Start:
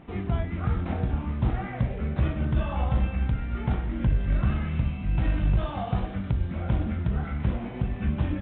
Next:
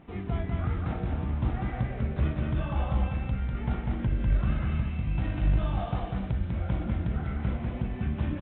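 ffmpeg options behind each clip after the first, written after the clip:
ffmpeg -i in.wav -af "aecho=1:1:197:0.668,volume=-4dB" out.wav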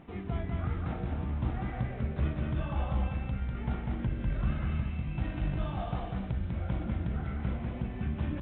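ffmpeg -i in.wav -af "bandreject=frequency=50:width_type=h:width=6,bandreject=frequency=100:width_type=h:width=6,areverse,acompressor=mode=upward:threshold=-31dB:ratio=2.5,areverse,volume=-3dB" out.wav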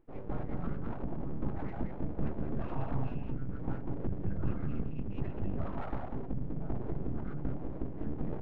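ffmpeg -i in.wav -af "afftdn=noise_reduction=21:noise_floor=-38,aeval=exprs='abs(val(0))':channel_layout=same,adynamicsmooth=sensitivity=8:basefreq=2900" out.wav

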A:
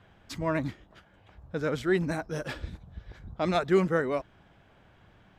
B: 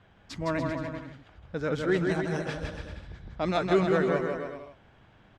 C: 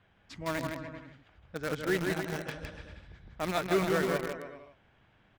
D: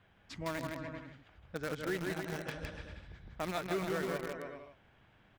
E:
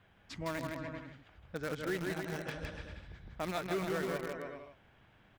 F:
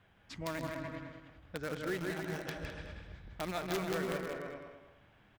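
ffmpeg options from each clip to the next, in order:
ffmpeg -i in.wav -filter_complex "[0:a]lowpass=7700,asplit=2[link_01][link_02];[link_02]aecho=0:1:160|288|390.4|472.3|537.9:0.631|0.398|0.251|0.158|0.1[link_03];[link_01][link_03]amix=inputs=2:normalize=0,volume=-1dB" out.wav
ffmpeg -i in.wav -filter_complex "[0:a]equalizer=frequency=2300:width_type=o:width=1.3:gain=4.5,asplit=2[link_01][link_02];[link_02]acrusher=bits=3:mix=0:aa=0.000001,volume=-6dB[link_03];[link_01][link_03]amix=inputs=2:normalize=0,volume=-8dB" out.wav
ffmpeg -i in.wav -af "acompressor=threshold=-35dB:ratio=2.5" out.wav
ffmpeg -i in.wav -af "asoftclip=type=tanh:threshold=-25dB,volume=1dB" out.wav
ffmpeg -i in.wav -filter_complex "[0:a]aeval=exprs='(mod(21.1*val(0)+1,2)-1)/21.1':channel_layout=same,asplit=2[link_01][link_02];[link_02]adelay=209,lowpass=frequency=4200:poles=1,volume=-8.5dB,asplit=2[link_03][link_04];[link_04]adelay=209,lowpass=frequency=4200:poles=1,volume=0.24,asplit=2[link_05][link_06];[link_06]adelay=209,lowpass=frequency=4200:poles=1,volume=0.24[link_07];[link_01][link_03][link_05][link_07]amix=inputs=4:normalize=0,volume=-1dB" out.wav

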